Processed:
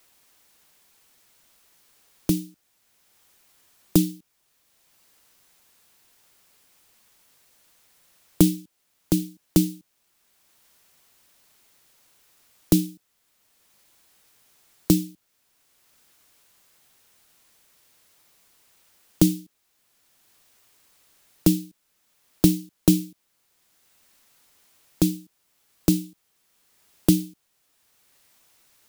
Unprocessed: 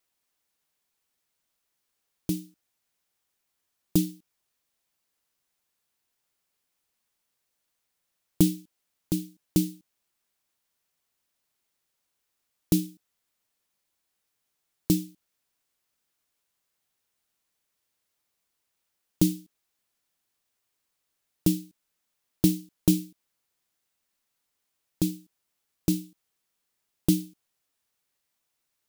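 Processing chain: three bands compressed up and down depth 40%; trim +6.5 dB

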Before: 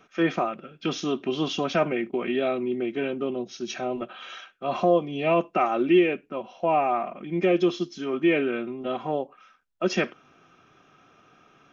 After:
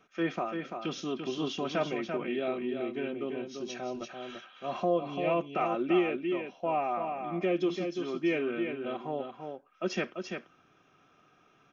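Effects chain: delay 340 ms -6 dB; trim -7.5 dB

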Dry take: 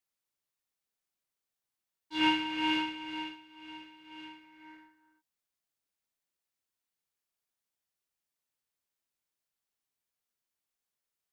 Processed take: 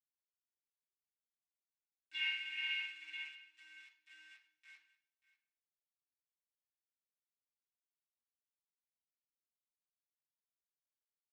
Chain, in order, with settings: local Wiener filter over 41 samples; compression 2:1, threshold -47 dBFS, peak gain reduction 13.5 dB; small samples zeroed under -54 dBFS; ladder band-pass 2.7 kHz, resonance 40%; delay 586 ms -17.5 dB; reverberation RT60 0.60 s, pre-delay 3 ms, DRR -2 dB; trim +11.5 dB

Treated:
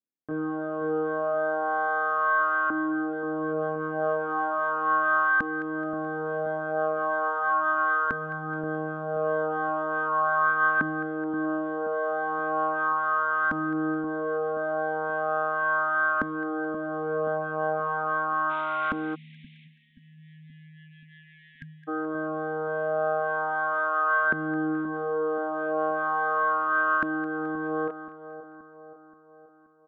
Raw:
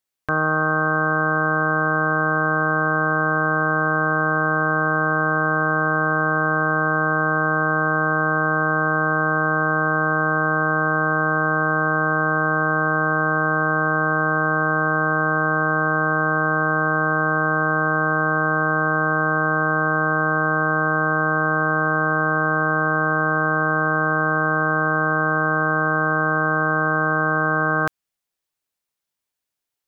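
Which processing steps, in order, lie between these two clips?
18.49–19.64 s: spectral contrast reduction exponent 0.19; chorus voices 2, 0.13 Hz, delay 25 ms, depth 4.5 ms; in parallel at -5 dB: saturation -21.5 dBFS, distortion -11 dB; on the sum: resampled via 8 kHz; LFO band-pass saw up 0.37 Hz 250–1500 Hz; on a send: two-band feedback delay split 1.2 kHz, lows 527 ms, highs 214 ms, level -12 dB; 19.15–21.88 s: on the sum: spectral selection erased 260–1600 Hz

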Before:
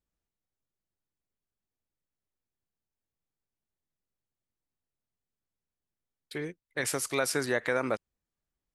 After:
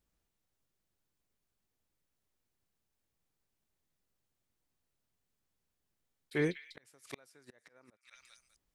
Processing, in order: repeats whose band climbs or falls 197 ms, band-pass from 2.9 kHz, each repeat 0.7 oct, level -10.5 dB; inverted gate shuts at -21 dBFS, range -39 dB; slow attack 100 ms; trim +6 dB

